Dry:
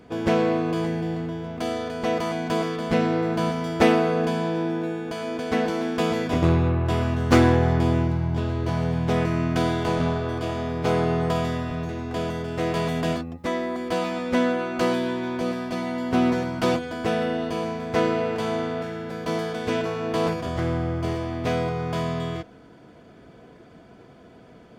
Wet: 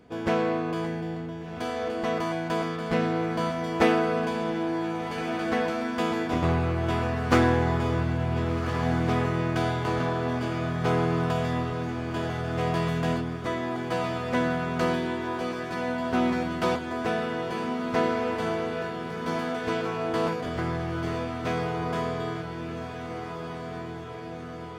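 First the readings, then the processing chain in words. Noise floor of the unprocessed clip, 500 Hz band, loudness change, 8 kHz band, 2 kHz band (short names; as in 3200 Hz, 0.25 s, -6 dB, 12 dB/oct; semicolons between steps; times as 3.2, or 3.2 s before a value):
-49 dBFS, -3.5 dB, -3.0 dB, -4.0 dB, -0.5 dB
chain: dynamic EQ 1300 Hz, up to +5 dB, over -37 dBFS, Q 0.76; diffused feedback echo 1.54 s, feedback 62%, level -7 dB; gain -5.5 dB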